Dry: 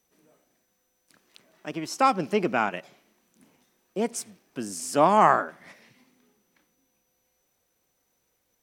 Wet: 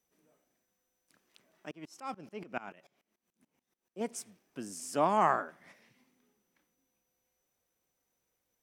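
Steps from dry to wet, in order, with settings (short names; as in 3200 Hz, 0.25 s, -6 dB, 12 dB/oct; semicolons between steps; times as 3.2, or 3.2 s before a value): bell 4200 Hz -3 dB 0.27 oct; 1.71–4.01 dB-ramp tremolo swelling 6.9 Hz, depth 23 dB; gain -8.5 dB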